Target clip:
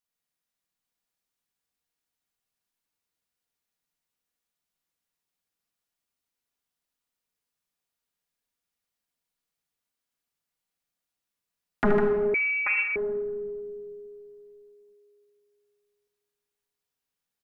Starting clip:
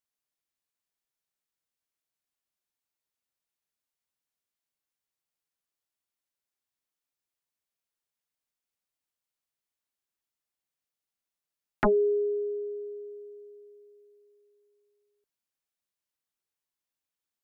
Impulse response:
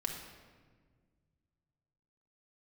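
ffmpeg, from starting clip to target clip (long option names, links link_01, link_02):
-filter_complex "[0:a]aecho=1:1:76|153|833:0.335|0.473|0.531[link_01];[1:a]atrim=start_sample=2205[link_02];[link_01][link_02]afir=irnorm=-1:irlink=0,asettb=1/sr,asplit=3[link_03][link_04][link_05];[link_03]atrim=end=12.344[link_06];[link_04]atrim=start=12.34:end=12.96,asetpts=PTS-STARTPTS,afade=type=in:duration=0.004:curve=qsin,afade=type=out:start_time=0.616:duration=0.004:curve=qsin,lowpass=frequency=2300:width_type=q:width=0.5098,lowpass=frequency=2300:width_type=q:width=0.6013,lowpass=frequency=2300:width_type=q:width=0.9,lowpass=frequency=2300:width_type=q:width=2.563,afreqshift=-2700[link_07];[link_05]atrim=start=12.956[link_08];[link_06][link_07]acrossfade=duration=0.004:curve1=hsin:curve2=qsin[link_09];[link_09][link_08]acrossfade=duration=0.004:curve1=qsin:curve2=hsin"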